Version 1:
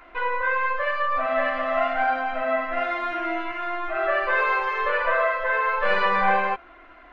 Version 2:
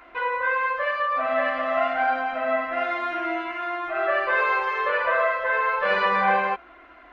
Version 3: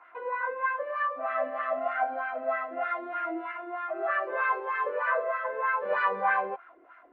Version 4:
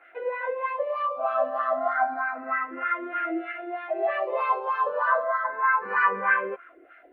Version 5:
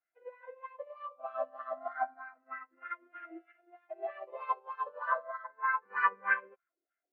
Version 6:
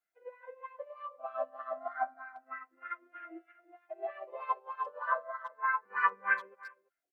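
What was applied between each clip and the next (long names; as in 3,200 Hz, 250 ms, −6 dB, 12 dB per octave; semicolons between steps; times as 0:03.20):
high-pass filter 48 Hz
LFO wah 3.2 Hz 340–1,600 Hz, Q 2.4
frequency shifter mixed with the dry sound +0.29 Hz; level +6.5 dB
expander for the loud parts 2.5 to 1, over −41 dBFS; level −4 dB
far-end echo of a speakerphone 340 ms, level −18 dB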